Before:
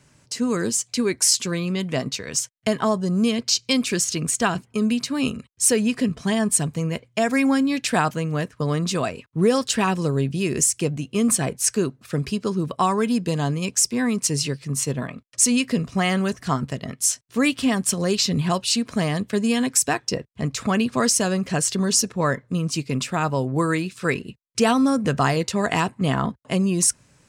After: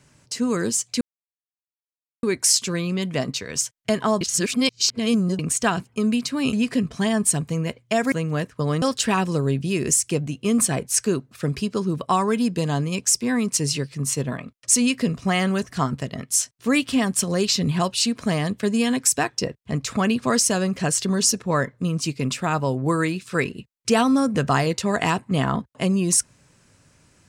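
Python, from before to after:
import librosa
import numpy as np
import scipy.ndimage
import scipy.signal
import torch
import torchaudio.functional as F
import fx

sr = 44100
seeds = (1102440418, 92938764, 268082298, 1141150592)

y = fx.edit(x, sr, fx.insert_silence(at_s=1.01, length_s=1.22),
    fx.reverse_span(start_s=2.99, length_s=1.18),
    fx.cut(start_s=5.31, length_s=0.48),
    fx.cut(start_s=7.38, length_s=0.75),
    fx.cut(start_s=8.83, length_s=0.69), tone=tone)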